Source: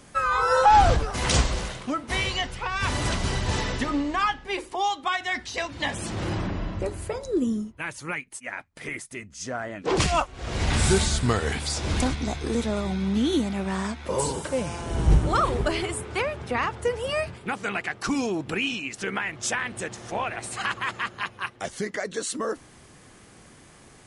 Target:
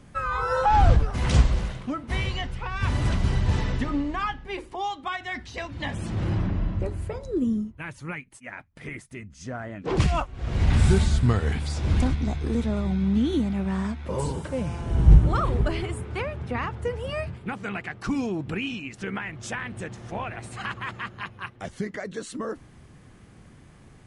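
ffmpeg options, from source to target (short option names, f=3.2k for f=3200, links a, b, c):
-af "bass=f=250:g=10,treble=f=4k:g=-7,volume=-4.5dB"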